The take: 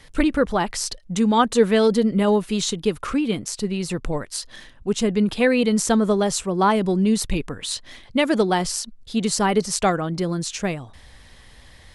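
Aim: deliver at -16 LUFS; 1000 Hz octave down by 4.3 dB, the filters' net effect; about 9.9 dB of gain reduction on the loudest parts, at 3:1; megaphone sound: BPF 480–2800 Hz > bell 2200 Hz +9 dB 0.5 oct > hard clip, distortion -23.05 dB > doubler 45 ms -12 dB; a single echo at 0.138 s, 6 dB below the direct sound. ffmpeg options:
-filter_complex "[0:a]equalizer=f=1k:t=o:g=-5.5,acompressor=threshold=-27dB:ratio=3,highpass=480,lowpass=2.8k,equalizer=f=2.2k:t=o:w=0.5:g=9,aecho=1:1:138:0.501,asoftclip=type=hard:threshold=-21.5dB,asplit=2[a][b];[b]adelay=45,volume=-12dB[c];[a][c]amix=inputs=2:normalize=0,volume=17.5dB"

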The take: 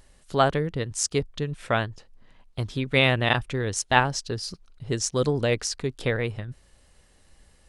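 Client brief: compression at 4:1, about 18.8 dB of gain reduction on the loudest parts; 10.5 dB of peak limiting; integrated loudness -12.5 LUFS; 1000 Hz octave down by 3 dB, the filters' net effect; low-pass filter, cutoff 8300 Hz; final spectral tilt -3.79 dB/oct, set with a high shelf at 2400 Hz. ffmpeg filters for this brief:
-af "lowpass=8.3k,equalizer=f=1k:t=o:g=-5.5,highshelf=f=2.4k:g=7.5,acompressor=threshold=-36dB:ratio=4,volume=28dB,alimiter=limit=-1dB:level=0:latency=1"

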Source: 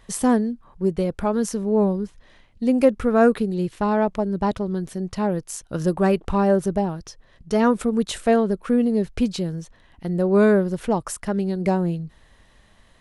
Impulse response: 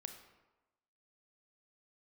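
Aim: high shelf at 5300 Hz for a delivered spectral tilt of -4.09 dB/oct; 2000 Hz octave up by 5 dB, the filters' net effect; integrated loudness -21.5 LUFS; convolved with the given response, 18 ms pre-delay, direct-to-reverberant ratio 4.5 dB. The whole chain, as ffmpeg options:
-filter_complex "[0:a]equalizer=f=2k:t=o:g=7.5,highshelf=f=5.3k:g=-4,asplit=2[a][b];[1:a]atrim=start_sample=2205,adelay=18[c];[b][c]afir=irnorm=-1:irlink=0,volume=-0.5dB[d];[a][d]amix=inputs=2:normalize=0,volume=-0.5dB"

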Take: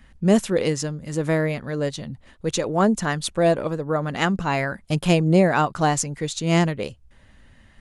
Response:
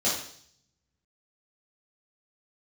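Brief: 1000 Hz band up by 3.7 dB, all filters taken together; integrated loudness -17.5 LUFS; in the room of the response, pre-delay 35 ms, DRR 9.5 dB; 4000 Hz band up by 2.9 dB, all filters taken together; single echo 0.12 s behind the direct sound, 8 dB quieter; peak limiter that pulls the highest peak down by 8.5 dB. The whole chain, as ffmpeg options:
-filter_complex "[0:a]equalizer=f=1k:t=o:g=5,equalizer=f=4k:t=o:g=3.5,alimiter=limit=-11dB:level=0:latency=1,aecho=1:1:120:0.398,asplit=2[a][b];[1:a]atrim=start_sample=2205,adelay=35[c];[b][c]afir=irnorm=-1:irlink=0,volume=-20.5dB[d];[a][d]amix=inputs=2:normalize=0,volume=4.5dB"

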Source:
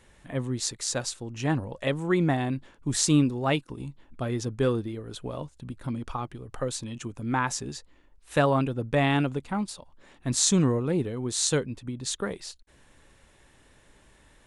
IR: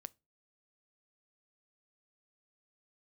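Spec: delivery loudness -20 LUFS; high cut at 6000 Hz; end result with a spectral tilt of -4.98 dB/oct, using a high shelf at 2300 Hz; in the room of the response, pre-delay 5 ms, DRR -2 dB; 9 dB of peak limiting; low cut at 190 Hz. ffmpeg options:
-filter_complex "[0:a]highpass=190,lowpass=6k,highshelf=f=2.3k:g=-4.5,alimiter=limit=-18dB:level=0:latency=1,asplit=2[a][b];[1:a]atrim=start_sample=2205,adelay=5[c];[b][c]afir=irnorm=-1:irlink=0,volume=8dB[d];[a][d]amix=inputs=2:normalize=0,volume=8.5dB"

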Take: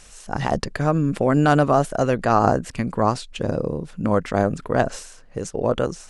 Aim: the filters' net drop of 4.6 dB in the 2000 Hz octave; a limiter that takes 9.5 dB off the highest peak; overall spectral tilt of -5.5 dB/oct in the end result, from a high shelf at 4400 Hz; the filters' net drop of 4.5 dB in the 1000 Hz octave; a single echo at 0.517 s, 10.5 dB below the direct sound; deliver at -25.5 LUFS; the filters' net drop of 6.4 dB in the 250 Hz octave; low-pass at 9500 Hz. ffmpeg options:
-af "lowpass=9.5k,equalizer=f=250:t=o:g=-8.5,equalizer=f=1k:t=o:g=-5,equalizer=f=2k:t=o:g=-5,highshelf=f=4.4k:g=5.5,alimiter=limit=-16dB:level=0:latency=1,aecho=1:1:517:0.299,volume=3dB"

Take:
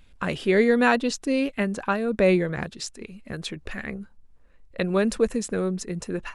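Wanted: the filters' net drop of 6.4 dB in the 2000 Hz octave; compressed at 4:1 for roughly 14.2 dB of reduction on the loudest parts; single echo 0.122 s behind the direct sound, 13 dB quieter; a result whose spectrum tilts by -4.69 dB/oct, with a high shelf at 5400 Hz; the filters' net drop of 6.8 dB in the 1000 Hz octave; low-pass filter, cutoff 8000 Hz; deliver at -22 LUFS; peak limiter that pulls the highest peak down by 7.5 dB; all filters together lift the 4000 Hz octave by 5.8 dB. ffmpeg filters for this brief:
-af "lowpass=8k,equalizer=f=1k:t=o:g=-8,equalizer=f=2k:t=o:g=-8.5,equalizer=f=4k:t=o:g=8,highshelf=f=5.4k:g=5,acompressor=threshold=-34dB:ratio=4,alimiter=level_in=4dB:limit=-24dB:level=0:latency=1,volume=-4dB,aecho=1:1:122:0.224,volume=16dB"

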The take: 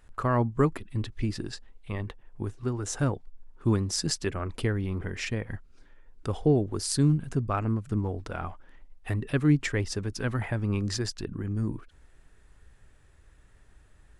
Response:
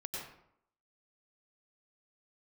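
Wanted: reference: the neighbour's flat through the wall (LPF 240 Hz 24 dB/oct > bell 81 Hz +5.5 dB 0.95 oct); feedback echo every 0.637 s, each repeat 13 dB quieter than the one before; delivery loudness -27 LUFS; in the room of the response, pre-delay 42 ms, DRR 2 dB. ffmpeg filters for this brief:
-filter_complex "[0:a]aecho=1:1:637|1274|1911:0.224|0.0493|0.0108,asplit=2[a][b];[1:a]atrim=start_sample=2205,adelay=42[c];[b][c]afir=irnorm=-1:irlink=0,volume=-2dB[d];[a][d]amix=inputs=2:normalize=0,lowpass=f=240:w=0.5412,lowpass=f=240:w=1.3066,equalizer=f=81:t=o:w=0.95:g=5.5,volume=1dB"

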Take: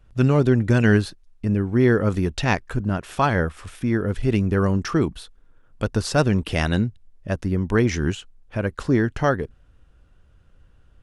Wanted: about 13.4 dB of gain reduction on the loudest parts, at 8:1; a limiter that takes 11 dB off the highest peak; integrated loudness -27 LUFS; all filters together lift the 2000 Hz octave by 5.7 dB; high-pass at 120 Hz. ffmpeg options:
-af "highpass=120,equalizer=f=2k:t=o:g=7.5,acompressor=threshold=-26dB:ratio=8,volume=7dB,alimiter=limit=-14.5dB:level=0:latency=1"

